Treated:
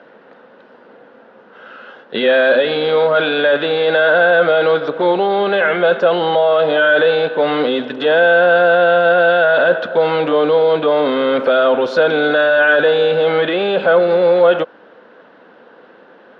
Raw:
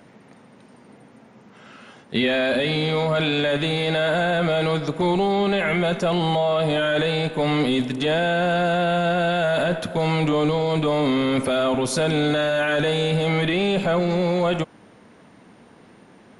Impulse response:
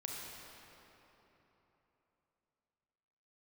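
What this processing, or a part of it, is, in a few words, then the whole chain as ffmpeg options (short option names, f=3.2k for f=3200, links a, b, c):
phone earpiece: -af "highpass=350,equalizer=f=510:t=q:w=4:g=9,equalizer=f=1.5k:t=q:w=4:g=9,equalizer=f=2.2k:t=q:w=4:g=-8,lowpass=f=3.7k:w=0.5412,lowpass=f=3.7k:w=1.3066,volume=5.5dB"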